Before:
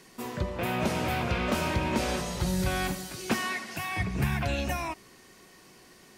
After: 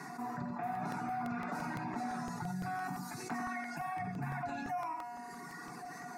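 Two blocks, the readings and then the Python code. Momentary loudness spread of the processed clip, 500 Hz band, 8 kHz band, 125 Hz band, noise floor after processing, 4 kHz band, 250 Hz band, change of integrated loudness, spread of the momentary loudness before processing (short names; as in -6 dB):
8 LU, -12.5 dB, -13.5 dB, -12.5 dB, -47 dBFS, -19.5 dB, -8.5 dB, -10.0 dB, 6 LU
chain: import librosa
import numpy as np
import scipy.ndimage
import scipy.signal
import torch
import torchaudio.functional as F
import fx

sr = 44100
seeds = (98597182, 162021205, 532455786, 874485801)

y = scipy.signal.sosfilt(scipy.signal.butter(4, 140.0, 'highpass', fs=sr, output='sos'), x)
y = fx.comb_fb(y, sr, f0_hz=240.0, decay_s=1.4, harmonics='all', damping=0.0, mix_pct=90)
y = fx.dereverb_blind(y, sr, rt60_s=1.2)
y = fx.lowpass(y, sr, hz=2300.0, slope=6)
y = fx.peak_eq(y, sr, hz=730.0, db=13.0, octaves=0.54)
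y = fx.fixed_phaser(y, sr, hz=1300.0, stages=4)
y = y + 0.5 * np.pad(y, (int(6.9 * sr / 1000.0), 0))[:len(y)]
y = y + 10.0 ** (-8.5 / 20.0) * np.pad(y, (int(87 * sr / 1000.0), 0))[:len(y)]
y = fx.buffer_crackle(y, sr, first_s=0.75, period_s=0.17, block=64, kind='repeat')
y = fx.env_flatten(y, sr, amount_pct=70)
y = F.gain(torch.from_numpy(y), 4.0).numpy()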